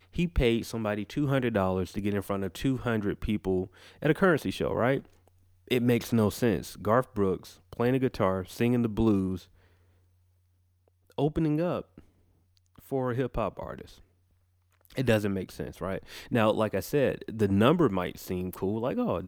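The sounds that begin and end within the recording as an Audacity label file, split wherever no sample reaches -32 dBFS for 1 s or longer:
11.180000	11.810000	sound
12.920000	13.810000	sound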